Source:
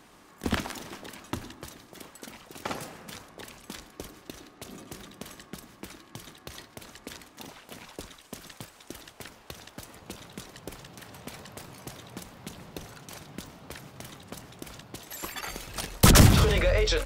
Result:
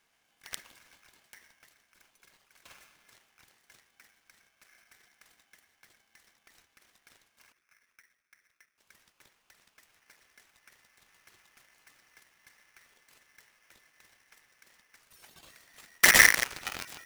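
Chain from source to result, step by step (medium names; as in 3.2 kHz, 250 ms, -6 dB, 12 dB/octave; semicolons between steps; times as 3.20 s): 7.52–8.78 s: median filter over 41 samples; Chebyshev shaper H 3 -17 dB, 7 -19 dB, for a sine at -4.5 dBFS; in parallel at -4 dB: crossover distortion -36 dBFS; on the sum: polarity switched at an audio rate 1.9 kHz; trim -4.5 dB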